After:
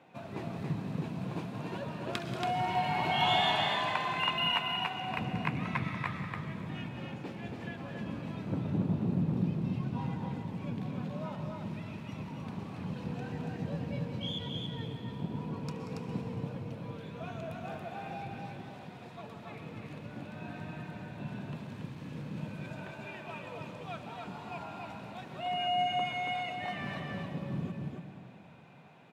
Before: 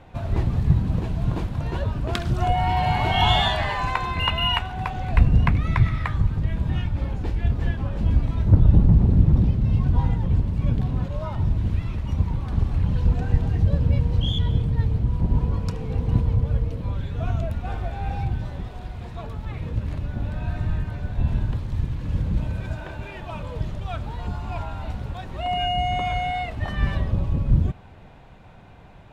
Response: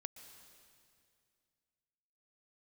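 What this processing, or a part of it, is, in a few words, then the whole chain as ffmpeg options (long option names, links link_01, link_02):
stadium PA: -filter_complex "[0:a]highpass=frequency=160:width=0.5412,highpass=frequency=160:width=1.3066,equalizer=frequency=2500:width_type=o:width=0.2:gain=5.5,aecho=1:1:183.7|279.9:0.251|0.631[link_01];[1:a]atrim=start_sample=2205[link_02];[link_01][link_02]afir=irnorm=-1:irlink=0,volume=-4dB"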